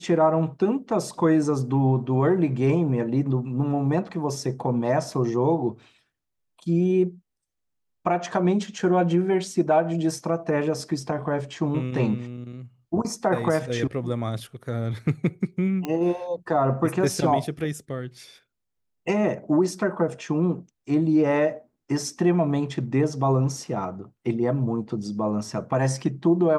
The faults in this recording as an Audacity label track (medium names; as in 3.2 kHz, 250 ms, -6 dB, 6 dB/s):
15.850000	15.850000	pop -15 dBFS